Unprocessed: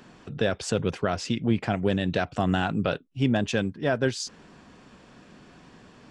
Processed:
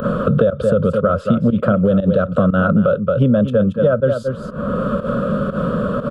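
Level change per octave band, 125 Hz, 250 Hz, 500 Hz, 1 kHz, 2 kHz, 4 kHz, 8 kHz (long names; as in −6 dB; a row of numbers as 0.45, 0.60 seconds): +11.5 dB, +11.5 dB, +13.5 dB, +8.5 dB, +4.0 dB, can't be measured, below −10 dB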